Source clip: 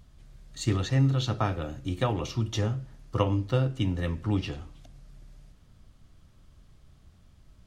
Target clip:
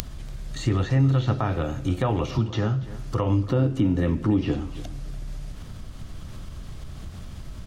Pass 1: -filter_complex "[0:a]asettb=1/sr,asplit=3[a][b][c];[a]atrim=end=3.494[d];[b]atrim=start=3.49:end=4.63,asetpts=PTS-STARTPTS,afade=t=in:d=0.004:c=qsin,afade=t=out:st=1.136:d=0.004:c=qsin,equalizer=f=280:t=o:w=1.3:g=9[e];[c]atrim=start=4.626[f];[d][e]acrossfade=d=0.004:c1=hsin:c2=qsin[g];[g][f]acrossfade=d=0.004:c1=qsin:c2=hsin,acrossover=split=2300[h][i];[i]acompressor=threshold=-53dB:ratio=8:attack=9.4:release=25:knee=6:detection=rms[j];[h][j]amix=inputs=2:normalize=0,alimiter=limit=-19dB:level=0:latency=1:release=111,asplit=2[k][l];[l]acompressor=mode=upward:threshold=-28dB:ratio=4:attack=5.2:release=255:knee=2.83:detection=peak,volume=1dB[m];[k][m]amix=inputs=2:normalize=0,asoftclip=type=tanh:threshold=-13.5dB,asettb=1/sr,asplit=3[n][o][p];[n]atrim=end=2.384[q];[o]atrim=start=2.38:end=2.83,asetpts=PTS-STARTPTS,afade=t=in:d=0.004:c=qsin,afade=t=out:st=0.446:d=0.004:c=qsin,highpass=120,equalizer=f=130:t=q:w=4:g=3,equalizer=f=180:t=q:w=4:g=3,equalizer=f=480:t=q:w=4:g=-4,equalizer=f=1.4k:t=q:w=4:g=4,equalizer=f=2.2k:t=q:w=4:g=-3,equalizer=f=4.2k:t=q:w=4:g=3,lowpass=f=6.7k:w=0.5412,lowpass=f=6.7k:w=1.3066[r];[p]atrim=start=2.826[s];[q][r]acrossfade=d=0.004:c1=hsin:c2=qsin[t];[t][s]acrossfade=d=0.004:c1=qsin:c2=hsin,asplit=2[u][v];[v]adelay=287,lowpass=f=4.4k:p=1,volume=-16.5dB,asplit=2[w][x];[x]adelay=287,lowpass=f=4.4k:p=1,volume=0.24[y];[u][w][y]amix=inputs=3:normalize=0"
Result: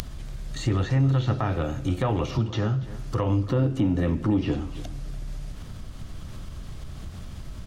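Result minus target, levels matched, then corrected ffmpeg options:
soft clip: distortion +20 dB
-filter_complex "[0:a]asettb=1/sr,asplit=3[a][b][c];[a]atrim=end=3.494[d];[b]atrim=start=3.49:end=4.63,asetpts=PTS-STARTPTS,afade=t=in:d=0.004:c=qsin,afade=t=out:st=1.136:d=0.004:c=qsin,equalizer=f=280:t=o:w=1.3:g=9[e];[c]atrim=start=4.626[f];[d][e]acrossfade=d=0.004:c1=hsin:c2=qsin[g];[g][f]acrossfade=d=0.004:c1=qsin:c2=hsin,acrossover=split=2300[h][i];[i]acompressor=threshold=-53dB:ratio=8:attack=9.4:release=25:knee=6:detection=rms[j];[h][j]amix=inputs=2:normalize=0,alimiter=limit=-19dB:level=0:latency=1:release=111,asplit=2[k][l];[l]acompressor=mode=upward:threshold=-28dB:ratio=4:attack=5.2:release=255:knee=2.83:detection=peak,volume=1dB[m];[k][m]amix=inputs=2:normalize=0,asoftclip=type=tanh:threshold=-2.5dB,asettb=1/sr,asplit=3[n][o][p];[n]atrim=end=2.384[q];[o]atrim=start=2.38:end=2.83,asetpts=PTS-STARTPTS,afade=t=in:d=0.004:c=qsin,afade=t=out:st=0.446:d=0.004:c=qsin,highpass=120,equalizer=f=130:t=q:w=4:g=3,equalizer=f=180:t=q:w=4:g=3,equalizer=f=480:t=q:w=4:g=-4,equalizer=f=1.4k:t=q:w=4:g=4,equalizer=f=2.2k:t=q:w=4:g=-3,equalizer=f=4.2k:t=q:w=4:g=3,lowpass=f=6.7k:w=0.5412,lowpass=f=6.7k:w=1.3066[r];[p]atrim=start=2.826[s];[q][r]acrossfade=d=0.004:c1=hsin:c2=qsin[t];[t][s]acrossfade=d=0.004:c1=qsin:c2=hsin,asplit=2[u][v];[v]adelay=287,lowpass=f=4.4k:p=1,volume=-16.5dB,asplit=2[w][x];[x]adelay=287,lowpass=f=4.4k:p=1,volume=0.24[y];[u][w][y]amix=inputs=3:normalize=0"

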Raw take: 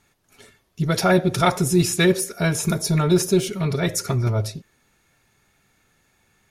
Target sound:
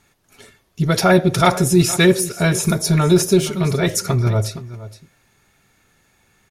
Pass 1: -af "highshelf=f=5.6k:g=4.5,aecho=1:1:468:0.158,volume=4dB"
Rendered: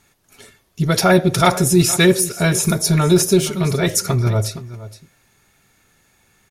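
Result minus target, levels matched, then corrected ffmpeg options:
8000 Hz band +2.5 dB
-af "aecho=1:1:468:0.158,volume=4dB"

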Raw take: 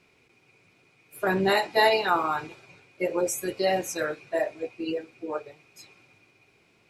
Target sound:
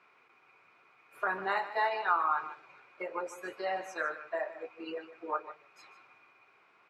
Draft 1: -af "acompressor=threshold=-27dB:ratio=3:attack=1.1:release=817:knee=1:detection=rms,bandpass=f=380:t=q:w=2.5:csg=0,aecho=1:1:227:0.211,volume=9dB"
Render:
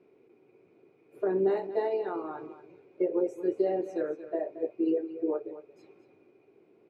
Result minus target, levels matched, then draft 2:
1000 Hz band -12.5 dB; echo 77 ms late
-af "acompressor=threshold=-27dB:ratio=3:attack=1.1:release=817:knee=1:detection=rms,bandpass=f=1.2k:t=q:w=2.5:csg=0,aecho=1:1:150:0.211,volume=9dB"

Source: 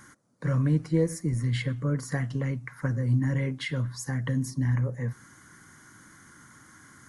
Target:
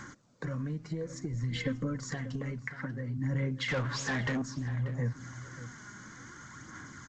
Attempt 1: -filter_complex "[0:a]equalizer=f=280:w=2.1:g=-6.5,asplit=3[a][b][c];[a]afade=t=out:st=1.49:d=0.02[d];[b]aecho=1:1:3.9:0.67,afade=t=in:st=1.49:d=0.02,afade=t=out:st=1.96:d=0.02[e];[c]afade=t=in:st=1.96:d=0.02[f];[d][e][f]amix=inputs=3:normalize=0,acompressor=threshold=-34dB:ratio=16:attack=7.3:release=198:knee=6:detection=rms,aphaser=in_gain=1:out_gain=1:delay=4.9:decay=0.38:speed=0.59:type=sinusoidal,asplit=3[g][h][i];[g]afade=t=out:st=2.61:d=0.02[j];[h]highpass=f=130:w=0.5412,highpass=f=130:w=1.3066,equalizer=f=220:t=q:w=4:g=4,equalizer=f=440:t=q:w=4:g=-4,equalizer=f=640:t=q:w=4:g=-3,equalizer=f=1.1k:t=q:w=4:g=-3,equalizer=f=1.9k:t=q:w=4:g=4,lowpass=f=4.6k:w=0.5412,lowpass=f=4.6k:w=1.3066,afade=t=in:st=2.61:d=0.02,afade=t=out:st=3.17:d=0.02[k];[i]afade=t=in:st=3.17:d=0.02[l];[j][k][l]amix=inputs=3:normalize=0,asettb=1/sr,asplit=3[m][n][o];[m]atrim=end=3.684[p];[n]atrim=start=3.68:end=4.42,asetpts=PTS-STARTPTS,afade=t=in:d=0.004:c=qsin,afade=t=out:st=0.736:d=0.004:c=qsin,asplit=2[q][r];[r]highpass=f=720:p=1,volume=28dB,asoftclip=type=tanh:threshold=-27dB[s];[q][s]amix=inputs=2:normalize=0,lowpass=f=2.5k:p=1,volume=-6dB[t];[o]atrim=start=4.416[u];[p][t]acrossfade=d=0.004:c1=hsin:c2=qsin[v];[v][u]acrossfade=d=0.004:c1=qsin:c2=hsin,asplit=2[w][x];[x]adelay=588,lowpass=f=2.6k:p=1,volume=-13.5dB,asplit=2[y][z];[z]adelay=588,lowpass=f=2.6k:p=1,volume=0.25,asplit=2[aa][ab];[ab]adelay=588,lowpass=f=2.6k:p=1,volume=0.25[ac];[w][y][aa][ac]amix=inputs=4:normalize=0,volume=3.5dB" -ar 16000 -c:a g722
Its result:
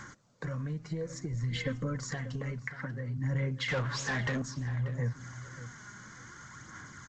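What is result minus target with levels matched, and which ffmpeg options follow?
250 Hz band -2.5 dB
-filter_complex "[0:a]asplit=3[a][b][c];[a]afade=t=out:st=1.49:d=0.02[d];[b]aecho=1:1:3.9:0.67,afade=t=in:st=1.49:d=0.02,afade=t=out:st=1.96:d=0.02[e];[c]afade=t=in:st=1.96:d=0.02[f];[d][e][f]amix=inputs=3:normalize=0,acompressor=threshold=-34dB:ratio=16:attack=7.3:release=198:knee=6:detection=rms,aphaser=in_gain=1:out_gain=1:delay=4.9:decay=0.38:speed=0.59:type=sinusoidal,asplit=3[g][h][i];[g]afade=t=out:st=2.61:d=0.02[j];[h]highpass=f=130:w=0.5412,highpass=f=130:w=1.3066,equalizer=f=220:t=q:w=4:g=4,equalizer=f=440:t=q:w=4:g=-4,equalizer=f=640:t=q:w=4:g=-3,equalizer=f=1.1k:t=q:w=4:g=-3,equalizer=f=1.9k:t=q:w=4:g=4,lowpass=f=4.6k:w=0.5412,lowpass=f=4.6k:w=1.3066,afade=t=in:st=2.61:d=0.02,afade=t=out:st=3.17:d=0.02[k];[i]afade=t=in:st=3.17:d=0.02[l];[j][k][l]amix=inputs=3:normalize=0,asettb=1/sr,asplit=3[m][n][o];[m]atrim=end=3.684[p];[n]atrim=start=3.68:end=4.42,asetpts=PTS-STARTPTS,afade=t=in:d=0.004:c=qsin,afade=t=out:st=0.736:d=0.004:c=qsin,asplit=2[q][r];[r]highpass=f=720:p=1,volume=28dB,asoftclip=type=tanh:threshold=-27dB[s];[q][s]amix=inputs=2:normalize=0,lowpass=f=2.5k:p=1,volume=-6dB[t];[o]atrim=start=4.416[u];[p][t]acrossfade=d=0.004:c1=hsin:c2=qsin[v];[v][u]acrossfade=d=0.004:c1=qsin:c2=hsin,asplit=2[w][x];[x]adelay=588,lowpass=f=2.6k:p=1,volume=-13.5dB,asplit=2[y][z];[z]adelay=588,lowpass=f=2.6k:p=1,volume=0.25,asplit=2[aa][ab];[ab]adelay=588,lowpass=f=2.6k:p=1,volume=0.25[ac];[w][y][aa][ac]amix=inputs=4:normalize=0,volume=3.5dB" -ar 16000 -c:a g722

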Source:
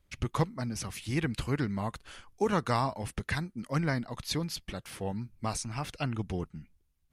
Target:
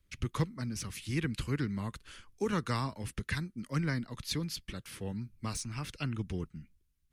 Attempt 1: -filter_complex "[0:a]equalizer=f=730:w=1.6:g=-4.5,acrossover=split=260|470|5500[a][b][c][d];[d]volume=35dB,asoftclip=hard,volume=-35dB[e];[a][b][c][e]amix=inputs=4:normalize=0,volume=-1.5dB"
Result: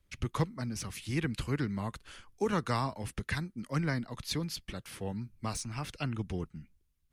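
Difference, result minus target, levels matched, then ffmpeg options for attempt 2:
1000 Hz band +2.5 dB
-filter_complex "[0:a]equalizer=f=730:w=1.6:g=-12,acrossover=split=260|470|5500[a][b][c][d];[d]volume=35dB,asoftclip=hard,volume=-35dB[e];[a][b][c][e]amix=inputs=4:normalize=0,volume=-1.5dB"

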